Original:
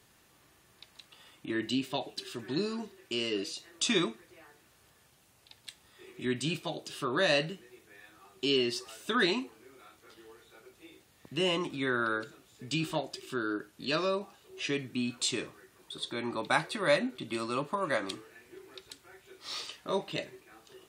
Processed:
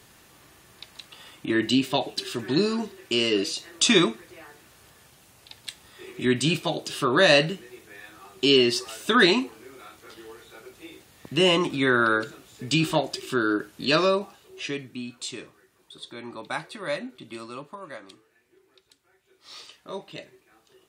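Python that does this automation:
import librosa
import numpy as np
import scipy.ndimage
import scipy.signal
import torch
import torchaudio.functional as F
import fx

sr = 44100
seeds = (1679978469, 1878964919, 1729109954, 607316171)

y = fx.gain(x, sr, db=fx.line((14.04, 9.5), (15.1, -3.5), (17.38, -3.5), (18.04, -10.5), (19.21, -10.5), (19.61, -4.0)))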